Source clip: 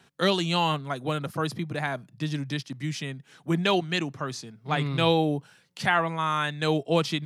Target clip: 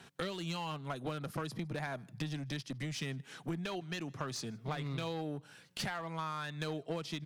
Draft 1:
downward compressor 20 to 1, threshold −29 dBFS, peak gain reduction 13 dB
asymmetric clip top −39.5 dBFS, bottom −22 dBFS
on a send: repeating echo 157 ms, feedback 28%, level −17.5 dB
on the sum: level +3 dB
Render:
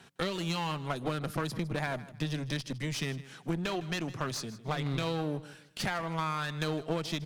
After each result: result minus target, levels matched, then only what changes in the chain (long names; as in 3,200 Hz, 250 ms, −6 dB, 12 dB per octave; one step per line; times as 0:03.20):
echo-to-direct +11 dB; downward compressor: peak gain reduction −7 dB
change: repeating echo 157 ms, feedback 28%, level −28.5 dB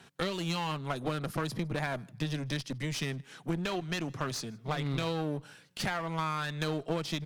downward compressor: peak gain reduction −7 dB
change: downward compressor 20 to 1, threshold −36.5 dBFS, peak gain reduction 20.5 dB